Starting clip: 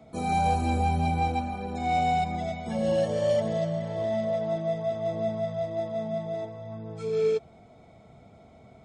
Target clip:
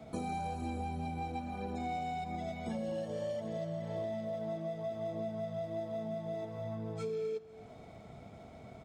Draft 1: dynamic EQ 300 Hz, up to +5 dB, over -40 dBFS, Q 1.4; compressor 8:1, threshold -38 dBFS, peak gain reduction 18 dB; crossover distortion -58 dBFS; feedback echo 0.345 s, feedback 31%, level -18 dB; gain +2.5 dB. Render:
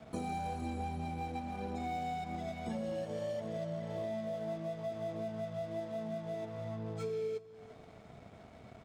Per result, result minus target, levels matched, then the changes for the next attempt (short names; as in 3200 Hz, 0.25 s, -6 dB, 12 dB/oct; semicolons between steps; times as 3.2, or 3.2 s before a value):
echo 97 ms late; crossover distortion: distortion +10 dB
change: feedback echo 0.248 s, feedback 31%, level -18 dB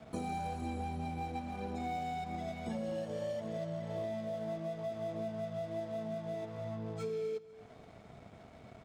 crossover distortion: distortion +10 dB
change: crossover distortion -68 dBFS